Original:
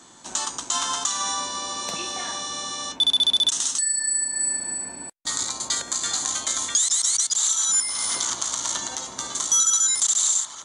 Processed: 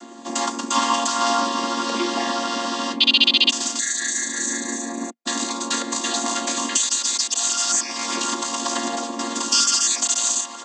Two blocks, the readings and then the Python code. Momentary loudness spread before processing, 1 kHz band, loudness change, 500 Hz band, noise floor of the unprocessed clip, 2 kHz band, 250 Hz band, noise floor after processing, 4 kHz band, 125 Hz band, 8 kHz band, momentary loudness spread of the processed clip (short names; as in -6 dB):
11 LU, +8.5 dB, +1.5 dB, +12.5 dB, -42 dBFS, +9.0 dB, +16.5 dB, -36 dBFS, +3.0 dB, n/a, -1.5 dB, 9 LU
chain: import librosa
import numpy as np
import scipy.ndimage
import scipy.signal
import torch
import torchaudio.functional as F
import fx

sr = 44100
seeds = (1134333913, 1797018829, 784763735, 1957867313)

y = fx.chord_vocoder(x, sr, chord='minor triad', root=58)
y = F.gain(torch.from_numpy(y), 3.0).numpy()